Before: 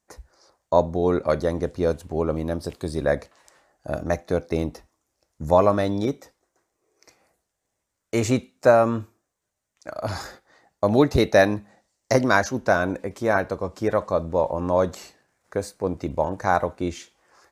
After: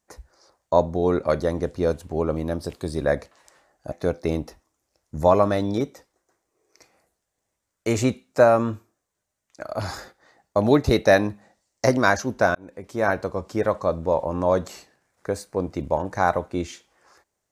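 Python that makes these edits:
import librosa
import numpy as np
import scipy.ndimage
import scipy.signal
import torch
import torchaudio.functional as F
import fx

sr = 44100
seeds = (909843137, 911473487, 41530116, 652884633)

y = fx.edit(x, sr, fx.cut(start_s=3.92, length_s=0.27),
    fx.fade_in_span(start_s=12.82, length_s=0.56), tone=tone)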